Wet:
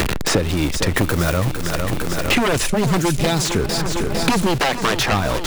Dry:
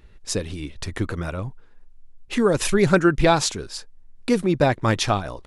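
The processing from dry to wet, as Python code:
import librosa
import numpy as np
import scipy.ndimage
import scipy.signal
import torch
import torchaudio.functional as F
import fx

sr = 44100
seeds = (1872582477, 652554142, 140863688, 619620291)

y = x + 0.5 * 10.0 ** (-28.5 / 20.0) * np.sign(x)
y = fx.peak_eq(y, sr, hz=1200.0, db=-12.5, octaves=2.8, at=(2.66, 3.45))
y = 10.0 ** (-17.5 / 20.0) * (np.abs((y / 10.0 ** (-17.5 / 20.0) + 3.0) % 4.0 - 2.0) - 1.0)
y = fx.high_shelf(y, sr, hz=9700.0, db=12.0, at=(0.97, 1.37))
y = fx.highpass(y, sr, hz=350.0, slope=12, at=(4.59, 5.12))
y = fx.echo_feedback(y, sr, ms=454, feedback_pct=57, wet_db=-13.0)
y = fx.band_squash(y, sr, depth_pct=100)
y = F.gain(torch.from_numpy(y), 5.5).numpy()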